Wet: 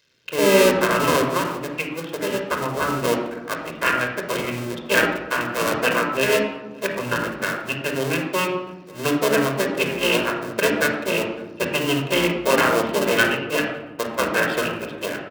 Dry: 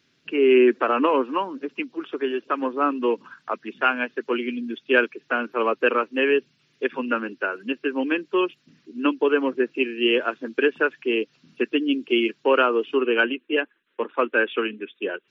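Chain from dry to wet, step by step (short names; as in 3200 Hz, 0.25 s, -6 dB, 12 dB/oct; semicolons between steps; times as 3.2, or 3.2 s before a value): cycle switcher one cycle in 2, muted; HPF 130 Hz 6 dB/oct; high shelf 3200 Hz +8 dB; outdoor echo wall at 95 m, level -24 dB; reverb RT60 1.0 s, pre-delay 25 ms, DRR 2.5 dB; gain -1 dB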